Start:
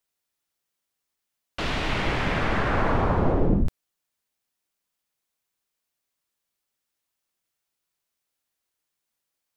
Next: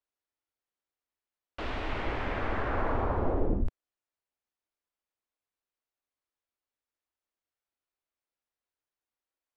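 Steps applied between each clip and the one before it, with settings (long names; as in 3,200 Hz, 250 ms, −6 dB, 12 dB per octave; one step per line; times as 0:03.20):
low-pass filter 1,500 Hz 6 dB per octave
parametric band 160 Hz −14.5 dB 0.6 octaves
level −5 dB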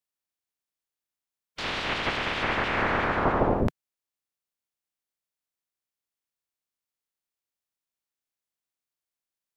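ceiling on every frequency bin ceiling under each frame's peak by 28 dB
level +2.5 dB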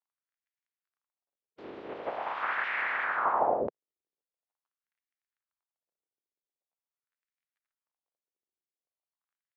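surface crackle 26 per second −60 dBFS
auto-filter band-pass sine 0.44 Hz 370–2,000 Hz
dynamic equaliser 810 Hz, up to +5 dB, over −40 dBFS, Q 0.87
level −1.5 dB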